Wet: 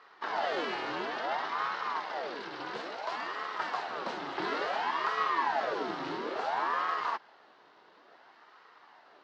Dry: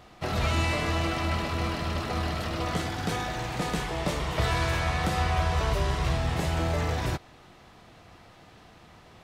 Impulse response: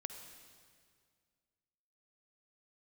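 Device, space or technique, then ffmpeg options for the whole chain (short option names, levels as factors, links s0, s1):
voice changer toy: -filter_complex "[0:a]asettb=1/sr,asplit=3[s0][s1][s2];[s0]atrim=end=2.004[s3];[s1]atrim=start=2:end=3.19,asetpts=PTS-STARTPTS,afade=t=in:d=0.004:c=qsin,afade=t=out:st=1.186:d=0.004:c=qsin,equalizer=f=530:t=o:w=1.6:g=-5.5[s4];[s2]atrim=start=3.186[s5];[s3][s4]acrossfade=d=0.004:c1=hsin:c2=qsin[s6];[s6][s5]acrossfade=d=0.004:c1=qsin:c2=hsin,aeval=exprs='val(0)*sin(2*PI*700*n/s+700*0.7/0.58*sin(2*PI*0.58*n/s))':c=same,highpass=460,equalizer=f=540:t=q:w=4:g=-5,equalizer=f=2400:t=q:w=4:g=-8,equalizer=f=3400:t=q:w=4:g=-5,lowpass=f=4400:w=0.5412,lowpass=f=4400:w=1.3066"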